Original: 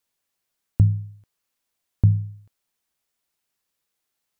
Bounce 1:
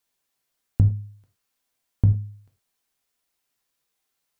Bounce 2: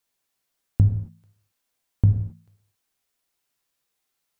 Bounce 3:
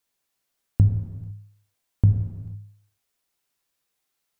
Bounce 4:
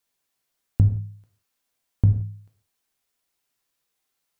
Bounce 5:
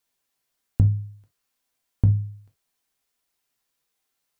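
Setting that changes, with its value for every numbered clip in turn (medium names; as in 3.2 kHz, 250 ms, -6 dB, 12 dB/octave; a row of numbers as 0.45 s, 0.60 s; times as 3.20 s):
gated-style reverb, gate: 130 ms, 300 ms, 520 ms, 200 ms, 90 ms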